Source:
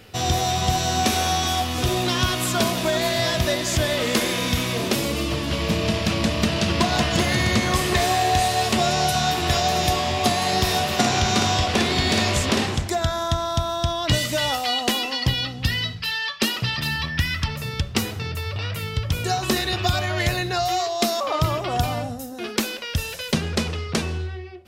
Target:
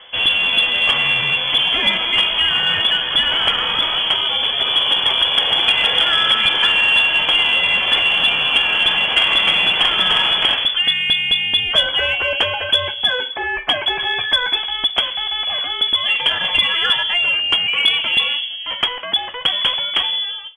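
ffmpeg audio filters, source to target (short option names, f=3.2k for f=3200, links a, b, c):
-af "atempo=1.2,lowpass=f=3k:t=q:w=0.5098,lowpass=f=3k:t=q:w=0.6013,lowpass=f=3k:t=q:w=0.9,lowpass=f=3k:t=q:w=2.563,afreqshift=-3500,acontrast=62"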